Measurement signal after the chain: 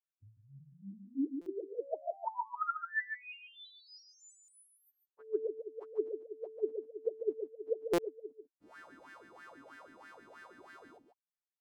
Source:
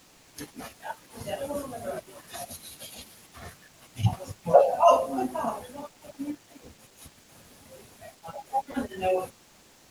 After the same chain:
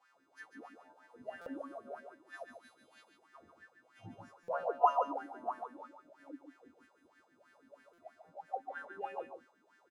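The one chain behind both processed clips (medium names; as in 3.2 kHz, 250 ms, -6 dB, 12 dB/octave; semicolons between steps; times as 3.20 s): partials quantised in pitch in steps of 2 st; treble shelf 6.8 kHz -4.5 dB; wah-wah 3.1 Hz 260–1700 Hz, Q 9.6; delay 144 ms -7 dB; buffer glitch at 1.41/4.43/7.93 s, samples 256, times 8; trim +1 dB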